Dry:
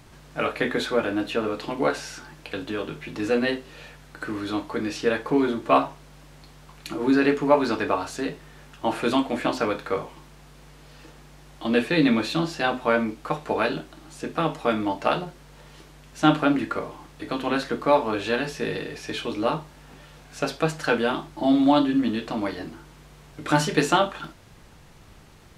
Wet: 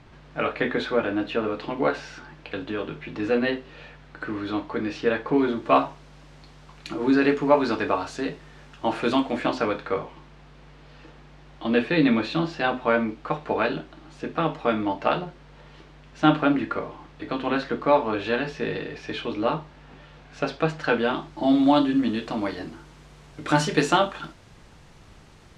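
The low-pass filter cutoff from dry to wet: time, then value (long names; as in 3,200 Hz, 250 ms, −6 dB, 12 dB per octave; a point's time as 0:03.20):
0:05.25 3,600 Hz
0:05.78 6,000 Hz
0:09.35 6,000 Hz
0:09.94 3,800 Hz
0:20.90 3,800 Hz
0:21.64 8,300 Hz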